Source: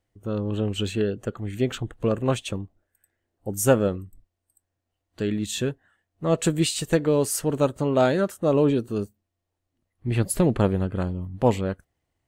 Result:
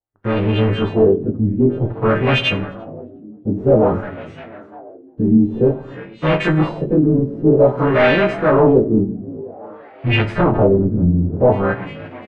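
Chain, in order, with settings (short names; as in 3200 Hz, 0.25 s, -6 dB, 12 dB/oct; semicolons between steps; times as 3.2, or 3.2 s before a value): frequency quantiser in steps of 2 st; sample leveller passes 5; air absorption 110 m; on a send: frequency-shifting echo 0.351 s, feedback 60%, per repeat +58 Hz, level -18 dB; on the sum: shoebox room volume 190 m³, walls mixed, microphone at 0.35 m; LFO low-pass sine 0.52 Hz 240–2600 Hz; gain -6.5 dB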